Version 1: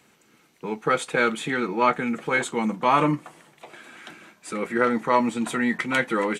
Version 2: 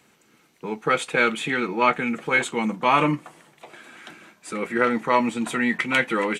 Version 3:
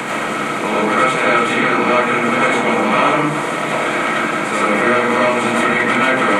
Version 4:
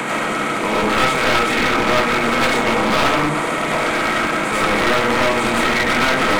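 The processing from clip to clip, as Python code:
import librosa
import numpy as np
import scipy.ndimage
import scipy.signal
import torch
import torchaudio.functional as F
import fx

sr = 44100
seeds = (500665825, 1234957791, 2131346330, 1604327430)

y1 = fx.dynamic_eq(x, sr, hz=2600.0, q=2.0, threshold_db=-41.0, ratio=4.0, max_db=7)
y2 = fx.bin_compress(y1, sr, power=0.4)
y2 = fx.rev_freeverb(y2, sr, rt60_s=0.71, hf_ratio=0.3, predelay_ms=55, drr_db=-8.5)
y2 = fx.band_squash(y2, sr, depth_pct=70)
y2 = y2 * librosa.db_to_amplitude(-7.5)
y3 = np.minimum(y2, 2.0 * 10.0 ** (-14.5 / 20.0) - y2)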